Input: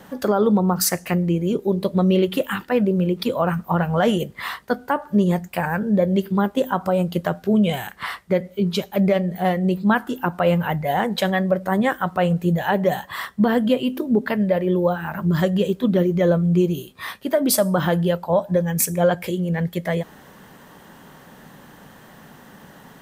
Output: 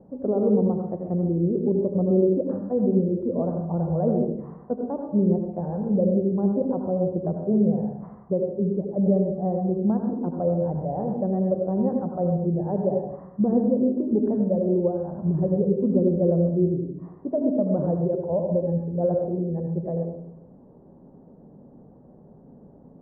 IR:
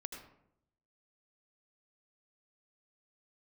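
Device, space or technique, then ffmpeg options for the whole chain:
next room: -filter_complex "[0:a]lowpass=f=630:w=0.5412,lowpass=f=630:w=1.3066[a];[1:a]atrim=start_sample=2205[b];[a][b]afir=irnorm=-1:irlink=0"

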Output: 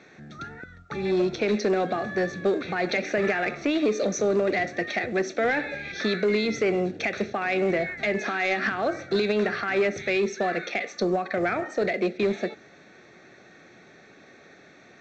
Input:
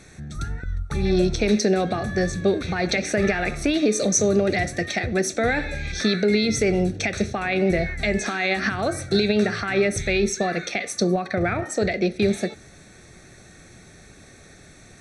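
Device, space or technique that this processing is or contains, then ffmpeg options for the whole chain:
telephone: -af "highpass=260,lowpass=3.1k,asoftclip=type=tanh:threshold=-15dB" -ar 16000 -c:a pcm_mulaw

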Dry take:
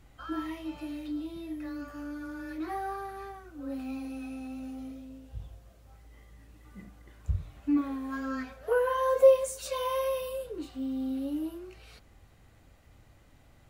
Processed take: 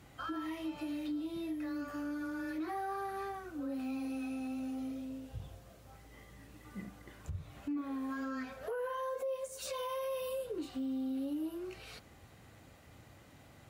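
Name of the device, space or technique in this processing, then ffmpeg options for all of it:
podcast mastering chain: -af "highpass=99,deesser=0.8,acompressor=threshold=-42dB:ratio=2.5,alimiter=level_in=11.5dB:limit=-24dB:level=0:latency=1:release=50,volume=-11.5dB,volume=4.5dB" -ar 48000 -c:a libmp3lame -b:a 96k

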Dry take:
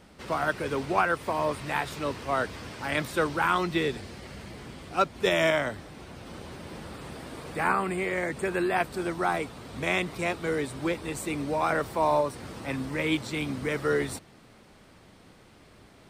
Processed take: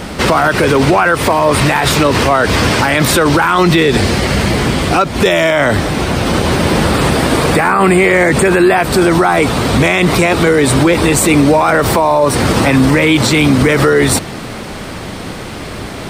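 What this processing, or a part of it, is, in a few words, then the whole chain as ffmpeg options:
loud club master: -af "acompressor=threshold=-28dB:ratio=2.5,asoftclip=type=hard:threshold=-19dB,alimiter=level_in=30.5dB:limit=-1dB:release=50:level=0:latency=1,volume=-1dB"

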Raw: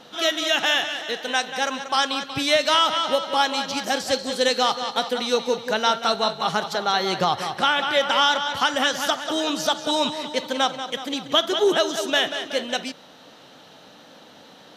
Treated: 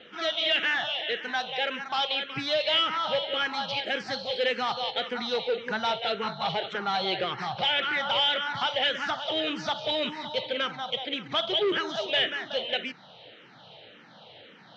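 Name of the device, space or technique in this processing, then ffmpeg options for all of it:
barber-pole phaser into a guitar amplifier: -filter_complex "[0:a]asplit=2[a][b];[b]afreqshift=-1.8[c];[a][c]amix=inputs=2:normalize=1,asoftclip=type=tanh:threshold=-21dB,highpass=85,equalizer=f=120:t=q:w=4:g=9,equalizer=f=270:t=q:w=4:g=-8,equalizer=f=1.1k:t=q:w=4:g=-5,equalizer=f=2.2k:t=q:w=4:g=5,equalizer=f=3.1k:t=q:w=4:g=4,lowpass=f=4.1k:w=0.5412,lowpass=f=4.1k:w=1.3066"

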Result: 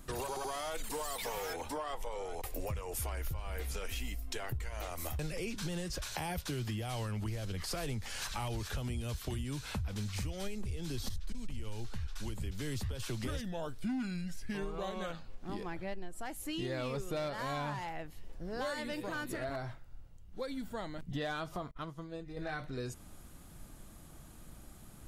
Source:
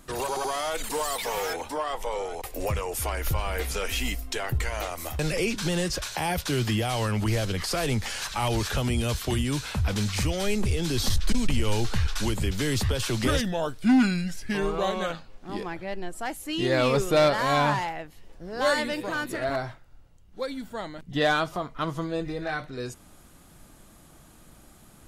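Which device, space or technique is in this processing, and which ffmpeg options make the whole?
ASMR close-microphone chain: -filter_complex "[0:a]lowshelf=f=160:g=7.5,acompressor=threshold=-31dB:ratio=5,highshelf=f=12k:g=5,asettb=1/sr,asplit=3[a][b][c];[a]atrim=end=21.714[d];[b]atrim=start=21.71:end=22.37,asetpts=PTS-STARTPTS,afade=t=in:d=0.004:c=qsin,afade=t=out:st=0.656:d=0.004:c=qsin,agate=range=-33dB:threshold=-28dB:ratio=3:detection=peak[e];[c]atrim=start=22.366[f];[d][e]acrossfade=d=0.004:c1=hsin:c2=qsin[g];[g][f]acrossfade=d=0.004:c1=qsin:c2=hsin,volume=-4.5dB"

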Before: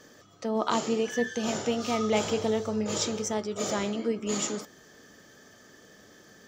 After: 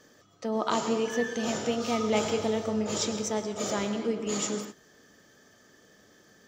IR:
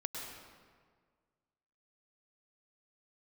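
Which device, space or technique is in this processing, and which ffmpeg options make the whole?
keyed gated reverb: -filter_complex "[0:a]asplit=3[a][b][c];[1:a]atrim=start_sample=2205[d];[b][d]afir=irnorm=-1:irlink=0[e];[c]apad=whole_len=285632[f];[e][f]sidechaingate=range=-33dB:threshold=-45dB:ratio=16:detection=peak,volume=-3dB[g];[a][g]amix=inputs=2:normalize=0,volume=-4.5dB"

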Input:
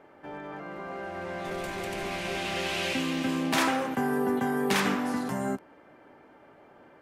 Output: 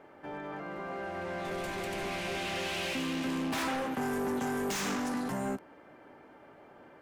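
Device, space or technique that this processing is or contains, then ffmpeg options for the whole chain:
saturation between pre-emphasis and de-emphasis: -filter_complex "[0:a]asettb=1/sr,asplit=3[a][b][c];[a]atrim=end=4.014[d];[b]atrim=start=4.01:end=5.09,asetpts=PTS-STARTPTS,afade=t=in:d=0.004:c=qsin,afade=t=out:st=1.076:d=0.004:c=qsin,equalizer=f=6.5k:t=o:w=0.87:g=12.5[e];[c]atrim=start=5.086[f];[d][e]acrossfade=d=0.004:c1=hsin:c2=qsin[g];[g][f]acrossfade=d=0.004:c1=qsin:c2=hsin,highshelf=f=4k:g=8.5,asoftclip=type=tanh:threshold=-28.5dB,highshelf=f=4k:g=-8.5"

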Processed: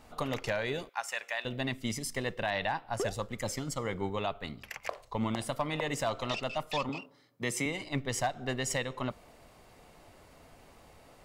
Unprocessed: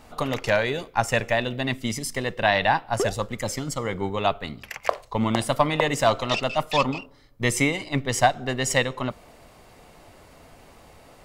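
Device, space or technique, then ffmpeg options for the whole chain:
clipper into limiter: -filter_complex "[0:a]asettb=1/sr,asplit=3[a][b][c];[a]atrim=end=0.894[d];[b]atrim=start=0.89:end=1.45,asetpts=PTS-STARTPTS,afade=t=in:d=0.004:c=qsin,afade=t=out:st=0.556:d=0.004:c=qsin,highpass=990[e];[c]atrim=start=1.446[f];[d][e]acrossfade=d=0.004:c1=hsin:c2=qsin[g];[g][f]acrossfade=d=0.004:c1=qsin:c2=hsin,asoftclip=type=hard:threshold=-8.5dB,alimiter=limit=-15dB:level=0:latency=1:release=178,asettb=1/sr,asplit=3[h][i][j];[h]atrim=end=6.894[k];[i]atrim=start=6.89:end=7.66,asetpts=PTS-STARTPTS,afade=t=in:d=0.004:c=qsin,afade=t=out:st=0.766:d=0.004:c=qsin,highpass=f=130:w=0.5412,highpass=f=130:w=1.3066[l];[j]atrim=start=7.656[m];[k][l]acrossfade=d=0.004:c1=hsin:c2=qsin[n];[n][m]acrossfade=d=0.004:c1=qsin:c2=hsin,volume=-6.5dB"

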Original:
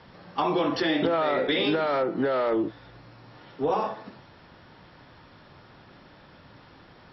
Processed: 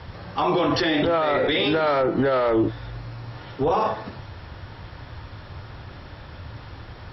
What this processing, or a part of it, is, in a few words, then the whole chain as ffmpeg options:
car stereo with a boomy subwoofer: -af "lowshelf=f=130:t=q:w=1.5:g=10.5,alimiter=limit=-22dB:level=0:latency=1:release=19,volume=8.5dB"

